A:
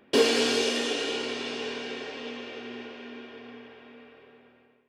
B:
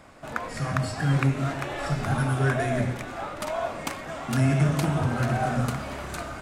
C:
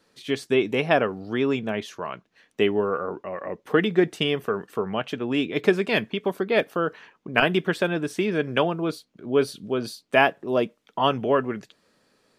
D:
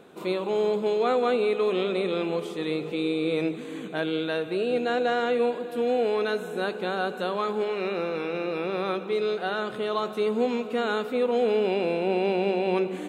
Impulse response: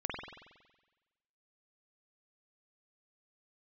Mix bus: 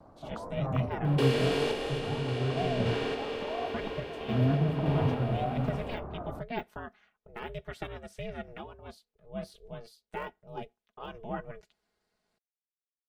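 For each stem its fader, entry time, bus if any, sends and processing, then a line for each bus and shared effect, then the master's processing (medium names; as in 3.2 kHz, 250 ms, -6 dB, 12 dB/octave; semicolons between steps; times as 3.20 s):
-6.5 dB, 1.05 s, no send, spectral levelling over time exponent 0.4; peaking EQ 6 kHz -11.5 dB 1.1 oct; hum notches 60/120/180/240 Hz
-2.0 dB, 0.00 s, no send, low-pass 1 kHz 24 dB/octave; vibrato 2 Hz 81 cents
-12.5 dB, 0.00 s, no send, de-esser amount 80%; comb 4.8 ms, depth 54%; ring modulator 230 Hz
mute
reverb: none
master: random-step tremolo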